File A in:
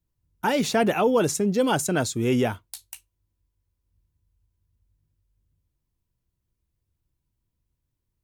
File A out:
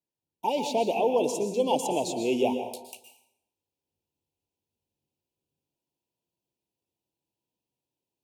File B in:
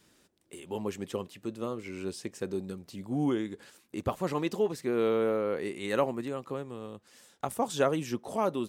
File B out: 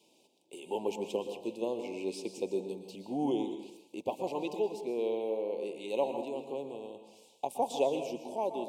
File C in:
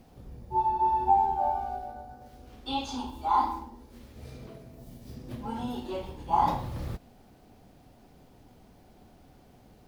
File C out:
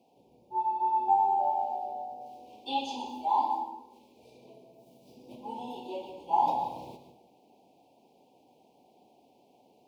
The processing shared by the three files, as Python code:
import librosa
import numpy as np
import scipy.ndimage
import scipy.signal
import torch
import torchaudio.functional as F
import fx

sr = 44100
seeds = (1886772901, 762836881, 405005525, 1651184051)

y = scipy.signal.sosfilt(scipy.signal.butter(2, 390.0, 'highpass', fs=sr, output='sos'), x)
y = fx.rev_plate(y, sr, seeds[0], rt60_s=0.8, hf_ratio=0.75, predelay_ms=105, drr_db=7.0)
y = fx.rider(y, sr, range_db=5, speed_s=2.0)
y = scipy.signal.sosfilt(scipy.signal.ellip(3, 1.0, 40, [930.0, 2500.0], 'bandstop', fs=sr, output='sos'), y)
y = fx.high_shelf(y, sr, hz=4600.0, db=-10.5)